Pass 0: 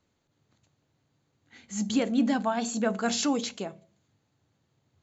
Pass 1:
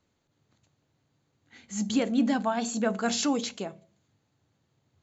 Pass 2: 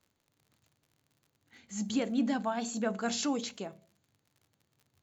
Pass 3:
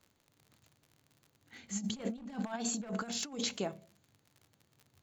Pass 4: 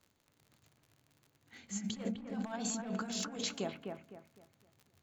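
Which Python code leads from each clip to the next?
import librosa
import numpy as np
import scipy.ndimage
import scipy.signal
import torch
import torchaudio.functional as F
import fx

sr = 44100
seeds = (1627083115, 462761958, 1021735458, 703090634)

y1 = x
y2 = fx.dmg_crackle(y1, sr, seeds[0], per_s=66.0, level_db=-47.0)
y2 = y2 * 10.0 ** (-5.0 / 20.0)
y3 = np.minimum(y2, 2.0 * 10.0 ** (-26.0 / 20.0) - y2)
y3 = fx.over_compress(y3, sr, threshold_db=-37.0, ratio=-0.5)
y4 = fx.echo_bbd(y3, sr, ms=255, stages=4096, feedback_pct=33, wet_db=-5.0)
y4 = y4 * 10.0 ** (-2.0 / 20.0)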